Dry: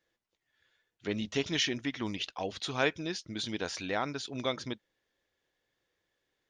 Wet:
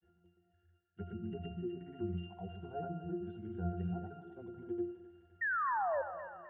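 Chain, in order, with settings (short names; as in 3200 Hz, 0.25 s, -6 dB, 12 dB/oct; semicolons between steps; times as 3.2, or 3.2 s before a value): treble ducked by the level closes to 670 Hz, closed at -28.5 dBFS; steep low-pass 3000 Hz; low shelf 260 Hz +7.5 dB; reverse; upward compressor, threshold -43 dBFS; reverse; grains, pitch spread up and down by 0 st; octave resonator F, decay 0.43 s; painted sound fall, 5.41–6.02, 520–1900 Hz -44 dBFS; thinning echo 0.259 s, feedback 65%, high-pass 860 Hz, level -9 dB; on a send at -12.5 dB: reverb RT60 0.95 s, pre-delay 73 ms; on the sum: gain +10 dB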